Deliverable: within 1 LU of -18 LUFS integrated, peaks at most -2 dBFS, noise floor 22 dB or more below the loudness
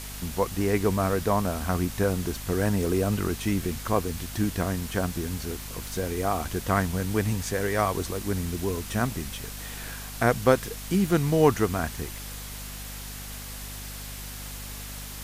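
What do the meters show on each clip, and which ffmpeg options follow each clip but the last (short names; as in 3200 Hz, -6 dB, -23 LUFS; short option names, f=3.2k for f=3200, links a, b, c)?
hum 50 Hz; harmonics up to 250 Hz; hum level -38 dBFS; noise floor -38 dBFS; noise floor target -50 dBFS; loudness -28.0 LUFS; peak -6.0 dBFS; loudness target -18.0 LUFS
-> -af "bandreject=f=50:t=h:w=6,bandreject=f=100:t=h:w=6,bandreject=f=150:t=h:w=6,bandreject=f=200:t=h:w=6,bandreject=f=250:t=h:w=6"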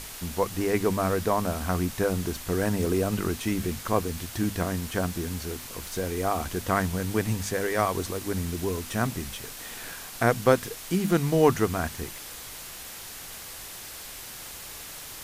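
hum none; noise floor -41 dBFS; noise floor target -51 dBFS
-> -af "afftdn=nr=10:nf=-41"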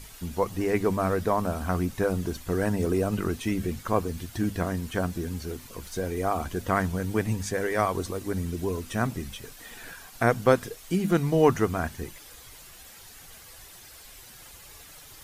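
noise floor -48 dBFS; noise floor target -50 dBFS
-> -af "afftdn=nr=6:nf=-48"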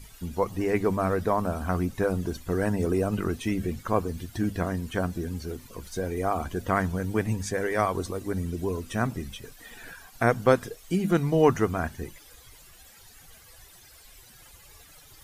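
noise floor -52 dBFS; loudness -27.5 LUFS; peak -7.0 dBFS; loudness target -18.0 LUFS
-> -af "volume=9.5dB,alimiter=limit=-2dB:level=0:latency=1"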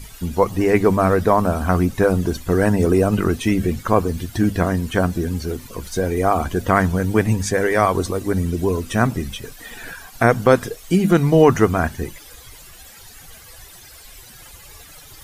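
loudness -18.5 LUFS; peak -2.0 dBFS; noise floor -43 dBFS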